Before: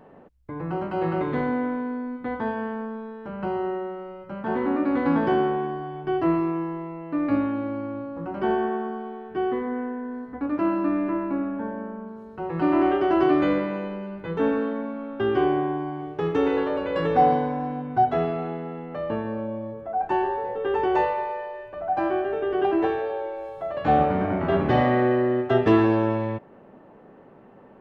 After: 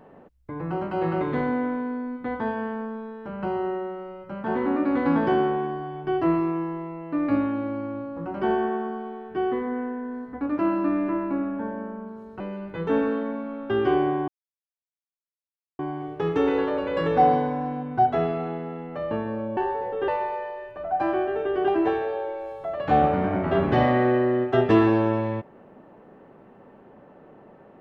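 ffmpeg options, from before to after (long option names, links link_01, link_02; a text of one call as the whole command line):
ffmpeg -i in.wav -filter_complex "[0:a]asplit=5[link_01][link_02][link_03][link_04][link_05];[link_01]atrim=end=12.402[link_06];[link_02]atrim=start=13.898:end=15.78,asetpts=PTS-STARTPTS,afade=type=out:start_time=1.878:duration=0.004:curve=hsin,apad=pad_dur=1.51[link_07];[link_03]atrim=start=15.78:end=19.562,asetpts=PTS-STARTPTS,afade=type=in:duration=0.004:curve=hsin[link_08];[link_04]atrim=start=20.198:end=20.712[link_09];[link_05]atrim=start=21.048[link_10];[link_07][link_08]concat=n=2:v=0:a=1[link_11];[link_06][link_11]acrossfade=duration=0.004:curve1=hsin:curve2=hsin[link_12];[link_12][link_09]acrossfade=duration=0.004:curve1=hsin:curve2=hsin[link_13];[link_13][link_10]acrossfade=duration=0.004:curve1=hsin:curve2=hsin" out.wav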